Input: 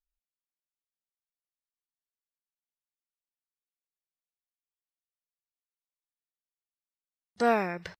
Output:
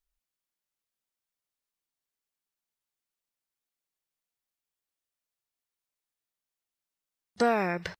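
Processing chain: compressor, threshold -26 dBFS, peak gain reduction 7 dB; gain +5 dB

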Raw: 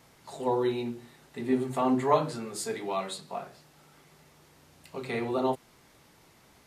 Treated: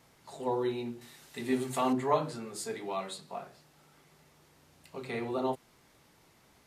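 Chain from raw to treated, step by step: 1.01–1.93 high shelf 2000 Hz +12 dB; gain -4 dB

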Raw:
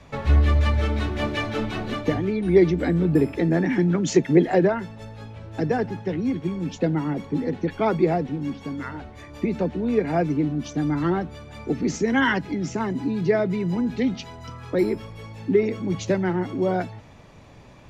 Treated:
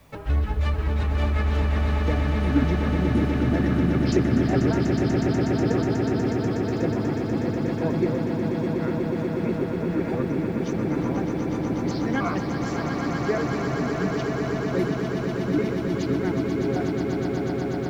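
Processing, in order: trilling pitch shifter -5.5 st, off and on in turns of 0.147 s; swelling echo 0.122 s, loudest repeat 8, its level -7 dB; requantised 10-bit, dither triangular; gain -5.5 dB

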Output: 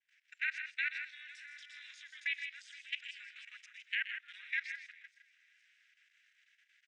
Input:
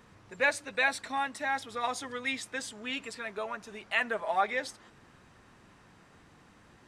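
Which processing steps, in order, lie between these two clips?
regenerating reverse delay 0.234 s, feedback 43%, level -12.5 dB; expander -54 dBFS; steep high-pass 1800 Hz 72 dB/oct; treble ducked by the level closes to 2700 Hz, closed at -28 dBFS; bell 4300 Hz -9 dB 0.31 oct; level quantiser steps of 18 dB; air absorption 140 m; loudspeakers at several distances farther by 43 m -12 dB, 55 m -9 dB; ring modulator 170 Hz; gain +7 dB

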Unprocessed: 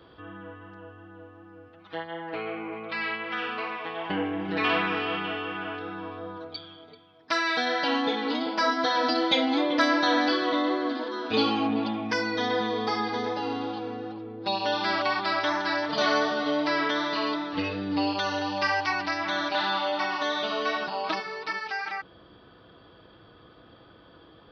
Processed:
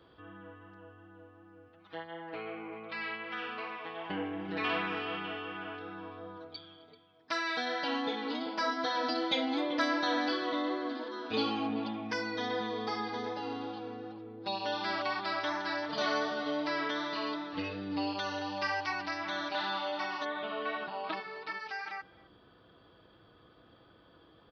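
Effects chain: 20.24–21.58 LPF 2700 Hz -> 4900 Hz 24 dB/oct; speakerphone echo 0.26 s, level -23 dB; gain -7.5 dB

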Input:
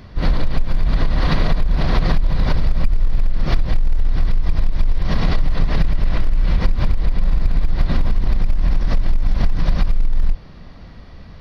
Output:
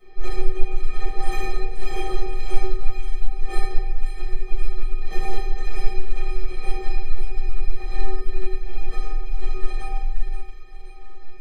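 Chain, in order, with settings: tracing distortion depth 0.11 ms; reverb removal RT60 1.5 s; bell 86 Hz -13 dB 2.2 oct; in parallel at +1 dB: compressor, threshold -23 dBFS, peak gain reduction 11.5 dB; on the sum: metallic resonator 370 Hz, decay 0.55 s, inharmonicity 0.03; small resonant body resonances 460/2300 Hz, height 17 dB, ringing for 55 ms; on a send: thin delay 0.528 s, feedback 55%, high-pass 1600 Hz, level -8 dB; on the sum: shoebox room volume 600 m³, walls mixed, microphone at 7 m; gain -4.5 dB

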